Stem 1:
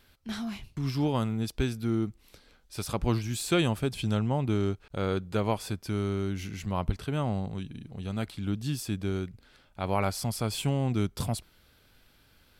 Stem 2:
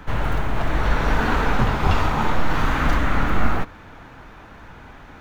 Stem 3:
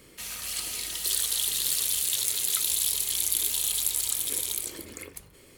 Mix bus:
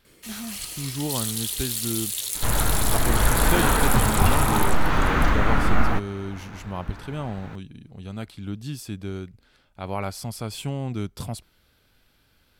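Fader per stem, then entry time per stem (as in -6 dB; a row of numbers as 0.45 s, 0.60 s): -1.5 dB, -0.5 dB, -2.0 dB; 0.00 s, 2.35 s, 0.05 s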